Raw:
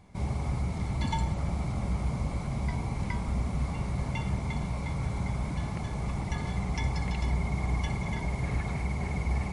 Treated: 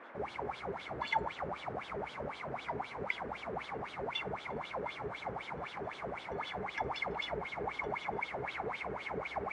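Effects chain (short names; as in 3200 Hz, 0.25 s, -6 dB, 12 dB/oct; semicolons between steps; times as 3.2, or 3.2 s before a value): wah 3.9 Hz 400–3500 Hz, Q 8.2; band noise 250–1700 Hz -65 dBFS; gain +12.5 dB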